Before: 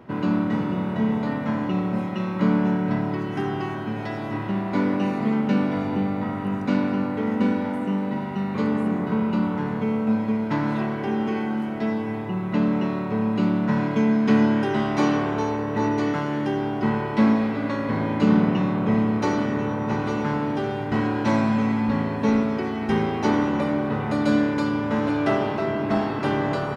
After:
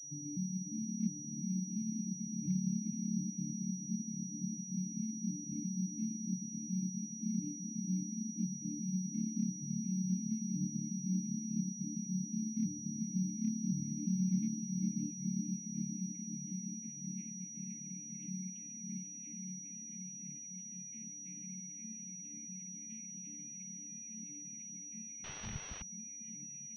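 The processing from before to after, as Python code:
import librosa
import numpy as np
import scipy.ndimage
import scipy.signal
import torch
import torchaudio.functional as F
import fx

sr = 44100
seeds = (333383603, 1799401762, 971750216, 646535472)

p1 = fx.vocoder_arp(x, sr, chord='major triad', root=50, every_ms=351)
p2 = fx.filter_sweep_bandpass(p1, sr, from_hz=280.0, to_hz=2000.0, start_s=13.98, end_s=17.31, q=0.88)
p3 = 10.0 ** (-27.5 / 20.0) * (np.abs((p2 / 10.0 ** (-27.5 / 20.0) + 3.0) % 4.0 - 2.0) - 1.0)
p4 = p2 + (p3 * librosa.db_to_amplitude(-7.0))
p5 = fx.vowel_filter(p4, sr, vowel='u')
p6 = fx.peak_eq(p5, sr, hz=280.0, db=11.0, octaves=1.5)
p7 = p6 + fx.echo_diffused(p6, sr, ms=475, feedback_pct=78, wet_db=-4, dry=0)
p8 = fx.schmitt(p7, sr, flips_db=-50.5, at=(25.24, 25.82))
p9 = scipy.signal.sosfilt(scipy.signal.cheby2(4, 60, [360.0, 1200.0], 'bandstop', fs=sr, output='sos'), p8)
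p10 = fx.dereverb_blind(p9, sr, rt60_s=1.3)
p11 = fx.pwm(p10, sr, carrier_hz=5800.0)
y = p11 * librosa.db_to_amplitude(9.0)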